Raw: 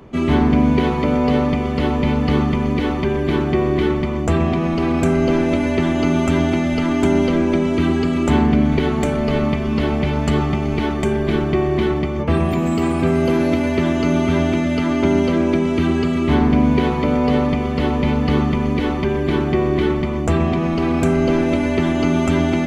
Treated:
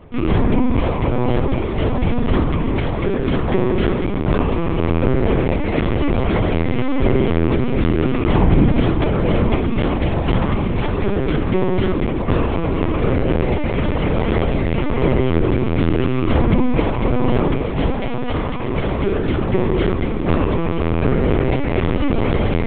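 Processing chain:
0:08.40–0:09.69: sub-octave generator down 2 octaves, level −1 dB
0:17.93–0:18.76: high-pass filter 310 Hz 12 dB per octave
feedback delay with all-pass diffusion 1,287 ms, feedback 75%, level −12 dB
linear-prediction vocoder at 8 kHz pitch kept

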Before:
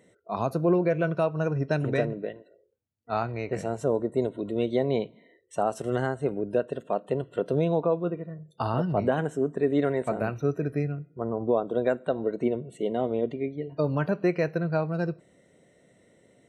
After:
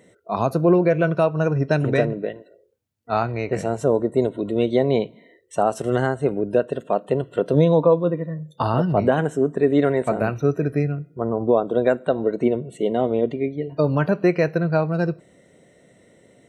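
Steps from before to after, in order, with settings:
0:07.53–0:08.64: EQ curve with evenly spaced ripples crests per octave 1.1, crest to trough 9 dB
level +6.5 dB

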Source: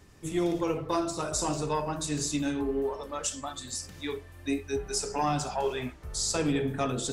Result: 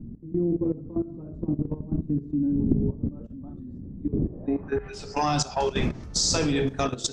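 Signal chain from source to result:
wind on the microphone 200 Hz −35 dBFS
low-pass filter sweep 250 Hz → 5,700 Hz, 0:04.12–0:05.18
output level in coarse steps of 15 dB
level +6.5 dB

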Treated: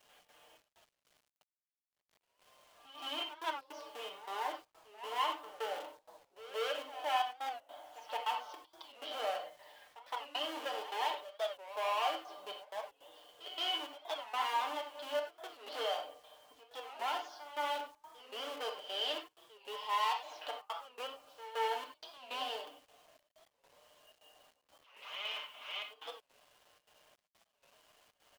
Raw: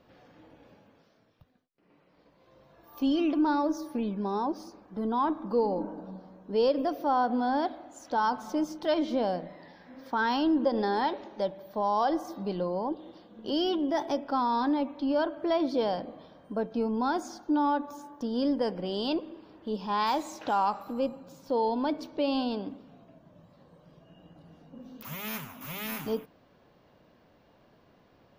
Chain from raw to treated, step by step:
dynamic equaliser 1,700 Hz, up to −5 dB, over −48 dBFS, Q 3.3
gate pattern "xx.xxx..x..xxx" 158 BPM −60 dB
low-pass filter 4,800 Hz 24 dB per octave
in parallel at −4 dB: comparator with hysteresis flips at −29.5 dBFS
on the sum: tube saturation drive 26 dB, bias 0.3
high-pass filter 570 Hz 24 dB per octave
parametric band 3,000 Hz +12 dB 0.29 octaves
comb filter 6.7 ms, depth 54%
on a send at −3 dB: convolution reverb, pre-delay 5 ms
on the sum: bit reduction 10 bits
echo ahead of the sound 172 ms −15 dB
wow of a warped record 45 rpm, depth 160 cents
level −5.5 dB

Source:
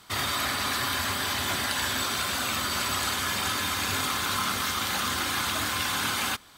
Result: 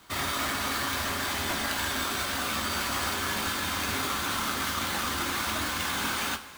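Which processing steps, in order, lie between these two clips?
each half-wave held at its own peak
coupled-rooms reverb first 0.23 s, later 2.9 s, from −18 dB, DRR 5.5 dB
level −7 dB

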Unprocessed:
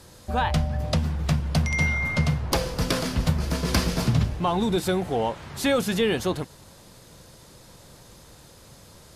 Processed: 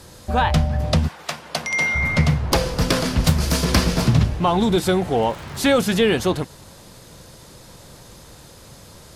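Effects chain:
0:01.07–0:01.94: high-pass filter 770 Hz → 330 Hz 12 dB per octave
0:03.24–0:03.65: high-shelf EQ 3,900 Hz +10.5 dB
0:05.16–0:05.65: surface crackle 160 per second −35 dBFS
highs frequency-modulated by the lows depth 0.18 ms
level +5.5 dB

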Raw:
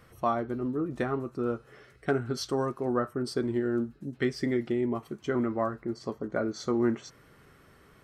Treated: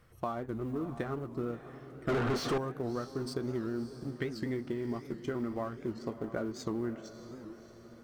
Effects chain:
mu-law and A-law mismatch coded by A
low-shelf EQ 120 Hz +8.5 dB
mains-hum notches 50/100/150/200/250 Hz
downward compressor, threshold −32 dBFS, peak gain reduction 11.5 dB
on a send: feedback delay with all-pass diffusion 624 ms, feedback 48%, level −12 dB
0:02.09–0:02.58: on the sum: mid-hump overdrive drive 39 dB, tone 1,400 Hz, clips at −22.5 dBFS
wow of a warped record 78 rpm, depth 160 cents

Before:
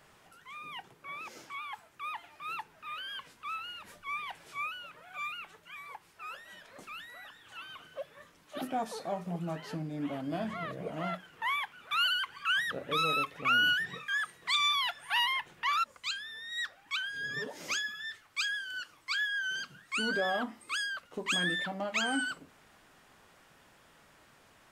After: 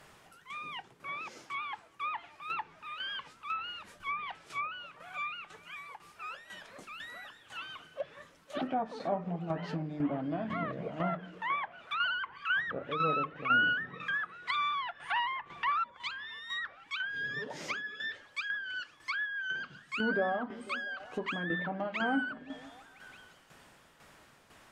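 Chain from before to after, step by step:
echo through a band-pass that steps 167 ms, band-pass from 160 Hz, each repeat 0.7 octaves, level −10 dB
shaped tremolo saw down 2 Hz, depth 60%
treble cut that deepens with the level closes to 1,500 Hz, closed at −33.5 dBFS
level +4.5 dB

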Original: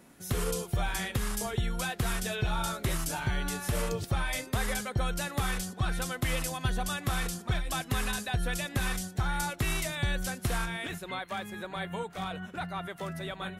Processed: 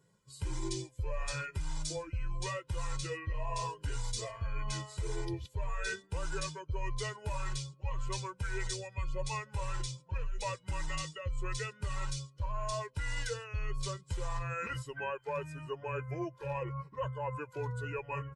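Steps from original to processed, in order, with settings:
spectral dynamics exaggerated over time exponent 1.5
high-shelf EQ 8,100 Hz −5.5 dB
comb filter 1.5 ms, depth 83%
reversed playback
downward compressor 6 to 1, threshold −36 dBFS, peak gain reduction 14 dB
reversed playback
wrong playback speed 45 rpm record played at 33 rpm
level +3 dB

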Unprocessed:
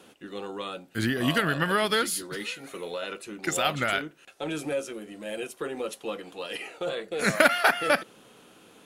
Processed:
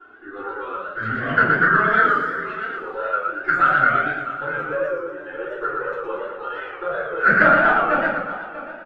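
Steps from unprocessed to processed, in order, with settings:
gain on one half-wave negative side −3 dB
low-pass with resonance 1,400 Hz, resonance Q 8.5
flanger swept by the level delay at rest 2.9 ms, full sweep at −10.5 dBFS
on a send: single-tap delay 643 ms −12 dB
on the sum: reverb reduction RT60 1.9 s
high-pass filter 97 Hz 6 dB per octave
rectangular room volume 71 cubic metres, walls mixed, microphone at 3.1 metres
feedback echo with a swinging delay time 116 ms, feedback 51%, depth 140 cents, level −3 dB
level −7.5 dB

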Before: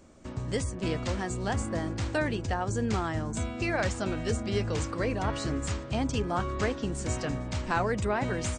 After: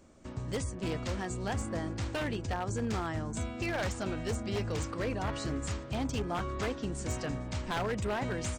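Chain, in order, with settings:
wave folding −22.5 dBFS
level −3.5 dB

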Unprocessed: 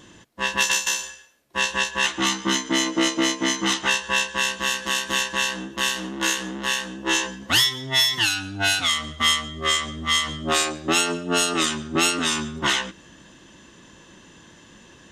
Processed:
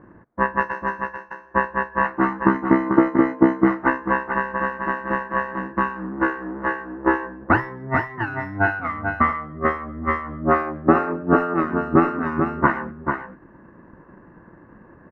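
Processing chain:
transient designer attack +10 dB, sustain −2 dB
inverse Chebyshev low-pass filter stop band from 3,100 Hz, stop band 40 dB
single-tap delay 441 ms −6 dB
level +1.5 dB

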